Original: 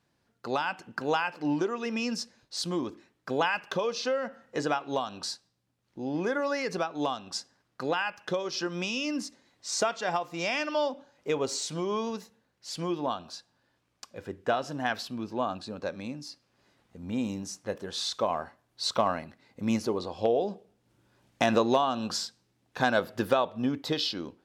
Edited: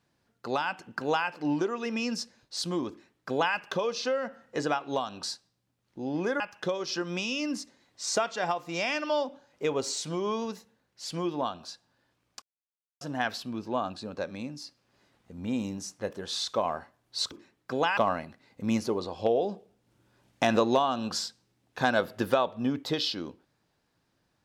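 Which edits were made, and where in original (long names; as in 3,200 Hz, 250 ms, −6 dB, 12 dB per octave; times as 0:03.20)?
0:02.89–0:03.55: duplicate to 0:18.96
0:06.40–0:08.05: remove
0:14.07–0:14.66: silence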